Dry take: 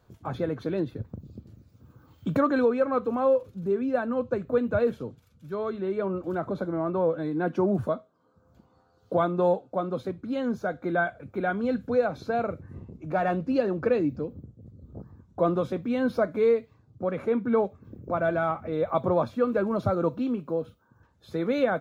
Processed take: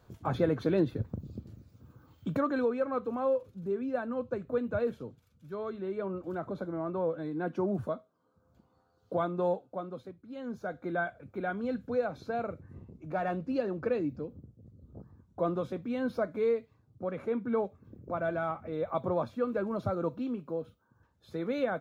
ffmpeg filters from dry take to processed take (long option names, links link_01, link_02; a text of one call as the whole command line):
ffmpeg -i in.wav -af "volume=12dB,afade=type=out:start_time=1.35:duration=1.04:silence=0.398107,afade=type=out:start_time=9.53:duration=0.7:silence=0.298538,afade=type=in:start_time=10.23:duration=0.52:silence=0.298538" out.wav